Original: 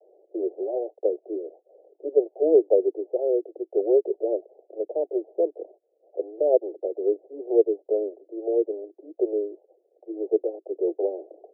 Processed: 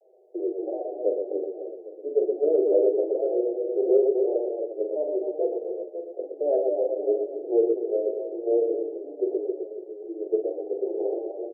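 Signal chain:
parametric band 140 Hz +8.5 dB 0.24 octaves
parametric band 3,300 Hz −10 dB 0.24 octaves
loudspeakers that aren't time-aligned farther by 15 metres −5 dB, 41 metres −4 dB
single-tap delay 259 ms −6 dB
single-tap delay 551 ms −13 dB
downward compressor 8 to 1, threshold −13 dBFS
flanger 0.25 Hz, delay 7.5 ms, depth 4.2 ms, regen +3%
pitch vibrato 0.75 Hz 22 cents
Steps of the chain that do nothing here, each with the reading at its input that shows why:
parametric band 140 Hz: nothing at its input below 270 Hz
parametric band 3,300 Hz: nothing at its input above 810 Hz

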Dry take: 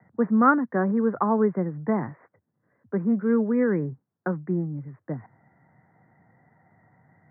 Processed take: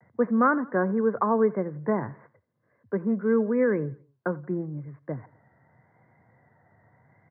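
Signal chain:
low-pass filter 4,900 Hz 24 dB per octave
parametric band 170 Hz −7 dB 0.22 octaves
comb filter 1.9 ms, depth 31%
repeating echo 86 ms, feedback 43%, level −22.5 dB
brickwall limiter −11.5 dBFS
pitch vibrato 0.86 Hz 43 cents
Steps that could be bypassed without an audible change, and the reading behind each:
low-pass filter 4,900 Hz: nothing at its input above 1,700 Hz

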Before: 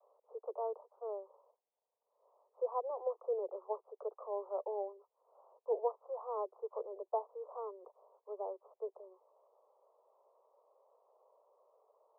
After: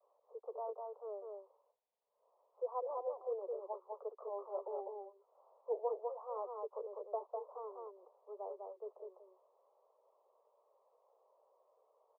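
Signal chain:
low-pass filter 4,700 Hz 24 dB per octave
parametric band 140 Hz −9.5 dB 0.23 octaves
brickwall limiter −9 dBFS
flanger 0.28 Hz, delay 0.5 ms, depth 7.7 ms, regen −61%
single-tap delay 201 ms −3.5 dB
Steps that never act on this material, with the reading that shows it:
low-pass filter 4,700 Hz: nothing at its input above 1,300 Hz
parametric band 140 Hz: nothing at its input below 340 Hz
brickwall limiter −9 dBFS: peak of its input −23.5 dBFS

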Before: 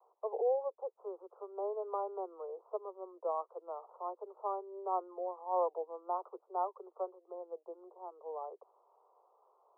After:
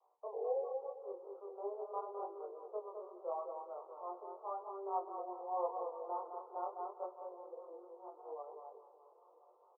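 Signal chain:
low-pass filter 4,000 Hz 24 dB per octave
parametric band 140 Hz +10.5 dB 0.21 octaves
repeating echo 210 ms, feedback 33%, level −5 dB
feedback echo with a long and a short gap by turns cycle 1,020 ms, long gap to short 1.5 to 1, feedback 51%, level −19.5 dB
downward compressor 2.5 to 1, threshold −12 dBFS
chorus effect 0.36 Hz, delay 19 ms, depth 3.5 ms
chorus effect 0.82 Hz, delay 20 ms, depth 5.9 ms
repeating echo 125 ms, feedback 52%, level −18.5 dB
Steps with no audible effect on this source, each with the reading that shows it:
low-pass filter 4,000 Hz: nothing at its input above 1,400 Hz
parametric band 140 Hz: nothing at its input below 320 Hz
downward compressor, threshold −12 dBFS: peak of its input −21.0 dBFS

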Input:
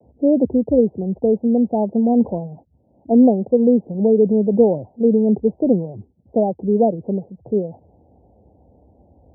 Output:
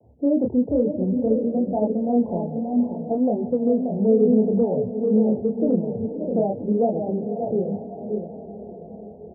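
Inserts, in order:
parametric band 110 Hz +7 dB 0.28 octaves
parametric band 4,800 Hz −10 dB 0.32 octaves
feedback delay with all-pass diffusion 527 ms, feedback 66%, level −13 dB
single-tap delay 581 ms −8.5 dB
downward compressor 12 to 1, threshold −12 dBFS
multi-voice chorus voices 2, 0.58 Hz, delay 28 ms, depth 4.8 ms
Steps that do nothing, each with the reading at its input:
parametric band 4,800 Hz: nothing at its input above 850 Hz

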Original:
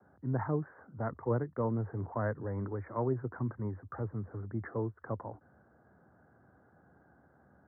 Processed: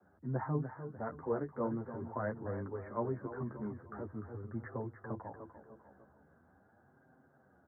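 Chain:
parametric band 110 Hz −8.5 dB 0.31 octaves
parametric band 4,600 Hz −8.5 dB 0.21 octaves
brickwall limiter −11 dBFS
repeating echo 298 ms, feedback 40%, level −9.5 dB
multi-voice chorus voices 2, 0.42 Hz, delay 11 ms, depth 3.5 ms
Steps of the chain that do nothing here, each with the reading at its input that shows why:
parametric band 4,600 Hz: nothing at its input above 1,800 Hz
brickwall limiter −11 dBFS: peak of its input −19.5 dBFS

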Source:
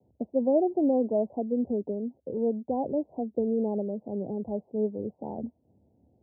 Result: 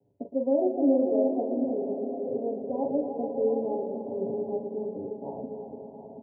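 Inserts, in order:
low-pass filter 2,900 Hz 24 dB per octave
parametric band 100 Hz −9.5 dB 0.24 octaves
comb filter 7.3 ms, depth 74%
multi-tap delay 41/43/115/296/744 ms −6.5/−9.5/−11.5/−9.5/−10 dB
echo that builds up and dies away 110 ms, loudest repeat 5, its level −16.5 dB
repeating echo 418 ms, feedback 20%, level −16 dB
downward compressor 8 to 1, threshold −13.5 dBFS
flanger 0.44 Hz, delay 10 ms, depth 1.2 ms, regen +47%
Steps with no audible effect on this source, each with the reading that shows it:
low-pass filter 2,900 Hz: nothing at its input above 850 Hz

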